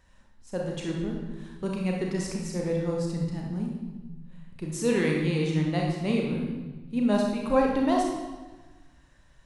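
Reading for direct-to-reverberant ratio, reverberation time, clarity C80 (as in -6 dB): -1.0 dB, 1.3 s, 4.5 dB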